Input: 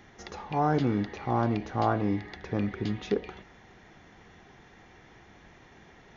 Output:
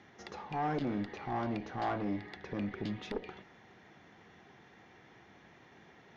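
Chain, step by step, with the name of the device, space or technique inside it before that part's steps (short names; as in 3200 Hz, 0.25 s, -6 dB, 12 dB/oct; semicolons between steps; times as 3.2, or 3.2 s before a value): valve radio (BPF 110–5700 Hz; tube stage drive 23 dB, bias 0.4; core saturation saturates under 210 Hz); gain -2.5 dB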